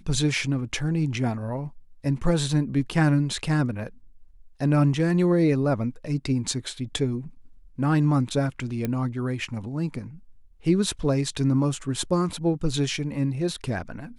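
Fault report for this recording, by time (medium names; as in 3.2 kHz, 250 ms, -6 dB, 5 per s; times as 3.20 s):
8.85 s: pop -14 dBFS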